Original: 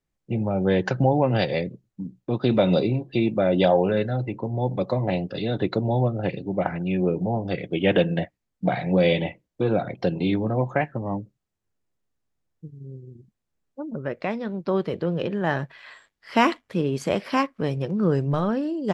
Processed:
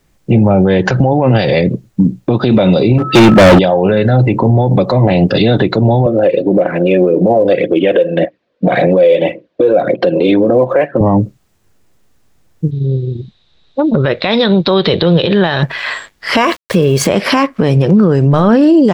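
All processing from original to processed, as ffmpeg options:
-filter_complex "[0:a]asettb=1/sr,asplit=3[a][b][c];[a]atrim=end=2.984[d];[b]atrim=start=2.98:end=3.59,asetpts=PTS-STARTPTS,afade=t=in:d=0.004:c=qsin,afade=t=out:st=0.606:d=0.004:c=qsin,highpass=54,aeval=exprs='val(0)+0.00708*sin(2*PI*1300*n/s)':c=same,asoftclip=type=hard:threshold=-27.5dB[e];[c]atrim=start=3.586[f];[d][e]acrossfade=d=0.004:c1=hsin:c2=qsin[g];[g][f]acrossfade=d=0.004:c1=qsin:c2=hsin,asettb=1/sr,asplit=3[h][i][j];[h]atrim=end=6.064[k];[i]atrim=start=6.06:end=11.01,asetpts=PTS-STARTPTS,afade=t=in:d=0.004:c=qsin,afade=t=out:st=4.946:d=0.004:c=qsin,highpass=300,equalizer=f=330:t=q:w=4:g=5,equalizer=f=530:t=q:w=4:g=9,equalizer=f=850:t=q:w=4:g=-9,equalizer=f=1.3k:t=q:w=4:g=-5,equalizer=f=2.1k:t=q:w=4:g=-6,equalizer=f=3k:t=q:w=4:g=-4,lowpass=f=3.5k:w=0.5412,lowpass=f=3.5k:w=1.3066,aphaser=in_gain=1:out_gain=1:delay=2.2:decay=0.43:speed=1.8:type=triangular[l];[j]atrim=start=11.006[m];[k][l]acrossfade=d=0.004:c1=hsin:c2=qsin[n];[n][m]acrossfade=d=0.004:c1=qsin:c2=hsin,asettb=1/sr,asplit=3[o][p][q];[o]atrim=end=12.714[r];[p]atrim=start=12.71:end=15.63,asetpts=PTS-STARTPTS,afade=t=in:d=0.004:c=qsin,afade=t=out:st=2.916:d=0.004:c=qsin,equalizer=f=250:w=2.3:g=-6,acompressor=threshold=-30dB:ratio=6:attack=3.2:release=140:knee=1:detection=peak,lowpass=f=3.8k:t=q:w=13[s];[q]atrim=start=15.626[t];[r][s]acrossfade=d=0.004:c1=hsin:c2=qsin[u];[u][t]acrossfade=d=0.004:c1=qsin:c2=hsin,asettb=1/sr,asplit=3[v][w][x];[v]atrim=end=16.374[y];[w]atrim=start=16.37:end=17.07,asetpts=PTS-STARTPTS,afade=t=in:d=0.004:c=qsin,afade=t=out:st=0.696:d=0.004:c=qsin,aecho=1:1:1.8:0.47,atrim=end_sample=30870,aeval=exprs='val(0)*gte(abs(val(0)),0.00668)':c=same[z];[x]atrim=start=17.066[aa];[y][z]acrossfade=d=0.004:c1=hsin:c2=qsin[ab];[ab][aa]acrossfade=d=0.004:c1=qsin:c2=hsin,acompressor=threshold=-26dB:ratio=6,alimiter=level_in=26.5dB:limit=-1dB:release=50:level=0:latency=1,volume=-1dB"

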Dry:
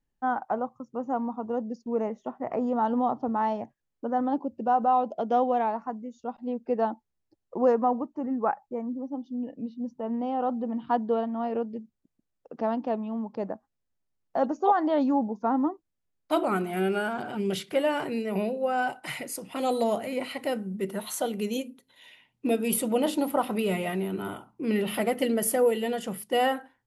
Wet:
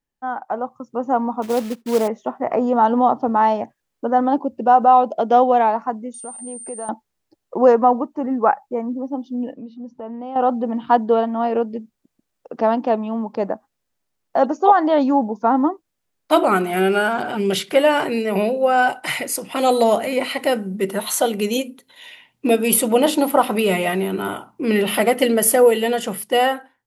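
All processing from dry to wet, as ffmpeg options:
-filter_complex "[0:a]asettb=1/sr,asplit=3[a][b][c];[a]atrim=end=1.424[d];[b]atrim=start=1.42:end=2.08,asetpts=PTS-STARTPTS,afade=t=in:d=0.004:c=qsin,afade=t=out:st=0.656:d=0.004:c=qsin,lowpass=f=1.8k:w=0.5412,lowpass=f=1.8k:w=1.3066,acrusher=bits=4:mode=log:mix=0:aa=0.000001[e];[c]atrim=start=2.076[f];[d][e]acrossfade=d=0.004:c1=hsin:c2=qsin[g];[g][f]acrossfade=d=0.004:c1=qsin:c2=hsin,asettb=1/sr,asplit=3[h][i][j];[h]atrim=end=6.144[k];[i]atrim=start=6.14:end=6.89,asetpts=PTS-STARTPTS,afade=t=in:d=0.004:c=qsin,afade=t=out:st=0.746:d=0.004:c=qsin,acompressor=threshold=-43dB:ratio=3:attack=3.2:release=140:knee=1:detection=peak,aeval=exprs='val(0)+0.00562*sin(2*PI*8900*n/s)':c=same[l];[j]atrim=start=6.886[m];[k][l]acrossfade=d=0.004:c1=hsin:c2=qsin[n];[n][m]acrossfade=d=0.004:c1=qsin:c2=hsin,asettb=1/sr,asplit=3[o][p][q];[o]atrim=end=9.534[r];[p]atrim=start=9.53:end=10.36,asetpts=PTS-STARTPTS,afade=t=in:d=0.004:c=qsin,afade=t=out:st=0.826:d=0.004:c=qsin,lowpass=f=3.7k:p=1,acompressor=threshold=-45dB:ratio=2:attack=3.2:release=140:knee=1:detection=peak[s];[q]atrim=start=10.356[t];[r][s]acrossfade=d=0.004:c1=hsin:c2=qsin[u];[u][t]acrossfade=d=0.004:c1=qsin:c2=hsin,lowshelf=f=230:g=-9,dynaudnorm=f=280:g=5:m=10.5dB,volume=1.5dB"

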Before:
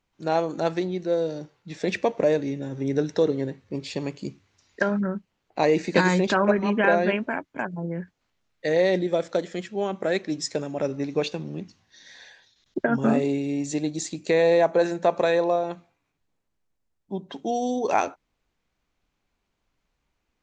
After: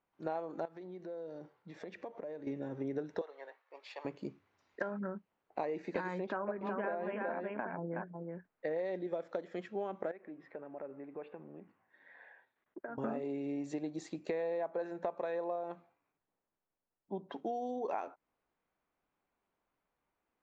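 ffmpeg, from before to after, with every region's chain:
-filter_complex "[0:a]asettb=1/sr,asplit=3[a][b][c];[a]atrim=end=0.654[d];[b]atrim=start=0.65:end=2.47,asetpts=PTS-STARTPTS,afade=t=in:d=0.004:c=qsin,afade=t=out:st=1.816:d=0.004:c=qsin,bandreject=f=2.6k:w=19,acompressor=threshold=-36dB:ratio=8:attack=3.2:release=140:knee=1:detection=peak[e];[c]atrim=start=2.466[f];[d][e]acrossfade=d=0.004:c1=hsin:c2=qsin[g];[g][f]acrossfade=d=0.004:c1=qsin:c2=hsin,asettb=1/sr,asplit=3[h][i][j];[h]atrim=end=3.214[k];[i]atrim=start=3.21:end=4.05,asetpts=PTS-STARTPTS,afade=t=in:d=0.004:c=qsin,afade=t=out:st=0.836:d=0.004:c=qsin,adynamicsmooth=sensitivity=6:basefreq=6.6k,highpass=f=700:w=0.5412,highpass=f=700:w=1.3066[l];[j]atrim=start=4.046[m];[k][l]acrossfade=d=0.004:c1=hsin:c2=qsin[n];[n][m]acrossfade=d=0.004:c1=qsin:c2=hsin,asettb=1/sr,asplit=3[o][p][q];[o]atrim=end=6.244[r];[p]atrim=start=6.24:end=8.78,asetpts=PTS-STARTPTS,afade=t=in:d=0.004:c=qsin,afade=t=out:st=2.536:d=0.004:c=qsin,lowpass=f=2.3k:p=1,aecho=1:1:371:0.531,atrim=end_sample=112014[s];[q]atrim=start=8.776[t];[r][s]acrossfade=d=0.004:c1=hsin:c2=qsin[u];[u][t]acrossfade=d=0.004:c1=qsin:c2=hsin,asettb=1/sr,asplit=3[v][w][x];[v]atrim=end=10.114[y];[w]atrim=start=10.11:end=12.98,asetpts=PTS-STARTPTS,afade=t=in:d=0.004:c=qsin,afade=t=out:st=2.866:d=0.004:c=qsin,lowpass=f=2.3k:w=0.5412,lowpass=f=2.3k:w=1.3066,lowshelf=f=170:g=-10,acompressor=threshold=-42dB:ratio=2.5:attack=3.2:release=140:knee=1:detection=peak[z];[x]atrim=start=12.976[aa];[y][z]acrossfade=d=0.004:c1=hsin:c2=qsin[ab];[ab][aa]acrossfade=d=0.004:c1=qsin:c2=hsin,lowpass=1.2k,aemphasis=mode=production:type=riaa,acompressor=threshold=-33dB:ratio=6,volume=-1.5dB"

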